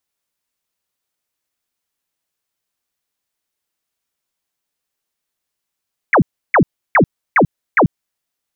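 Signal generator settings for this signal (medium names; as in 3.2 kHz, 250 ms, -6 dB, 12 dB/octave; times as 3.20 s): burst of laser zaps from 2.4 kHz, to 120 Hz, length 0.09 s sine, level -7 dB, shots 5, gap 0.32 s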